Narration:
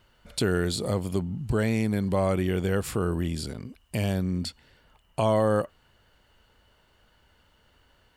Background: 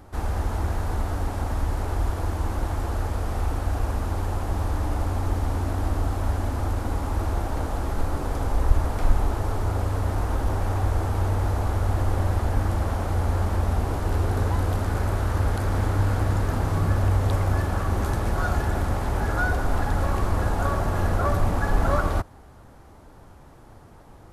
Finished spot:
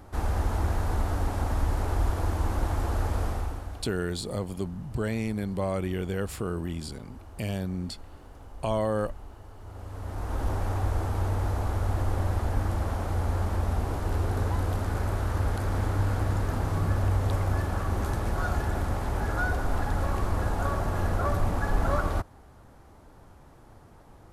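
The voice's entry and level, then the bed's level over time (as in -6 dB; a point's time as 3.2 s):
3.45 s, -4.5 dB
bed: 3.25 s -1 dB
4.03 s -21 dB
9.56 s -21 dB
10.43 s -4 dB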